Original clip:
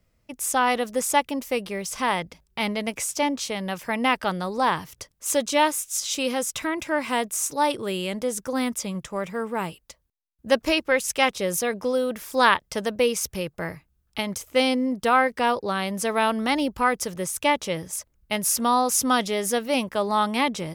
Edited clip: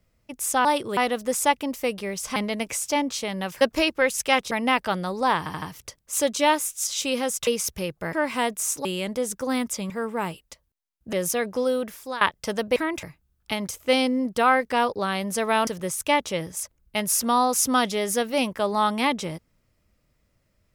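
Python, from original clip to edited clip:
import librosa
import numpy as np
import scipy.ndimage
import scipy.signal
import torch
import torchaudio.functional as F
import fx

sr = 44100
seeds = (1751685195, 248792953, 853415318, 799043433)

y = fx.edit(x, sr, fx.cut(start_s=2.04, length_s=0.59),
    fx.stutter(start_s=4.75, slice_s=0.08, count=4),
    fx.swap(start_s=6.6, length_s=0.27, other_s=13.04, other_length_s=0.66),
    fx.move(start_s=7.59, length_s=0.32, to_s=0.65),
    fx.cut(start_s=8.96, length_s=0.32),
    fx.move(start_s=10.51, length_s=0.9, to_s=3.88),
    fx.fade_out_to(start_s=12.06, length_s=0.43, floor_db=-21.0),
    fx.cut(start_s=16.34, length_s=0.69), tone=tone)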